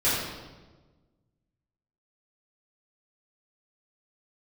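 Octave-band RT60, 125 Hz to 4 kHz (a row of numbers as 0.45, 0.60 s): 1.9, 1.6, 1.4, 1.2, 1.0, 0.95 s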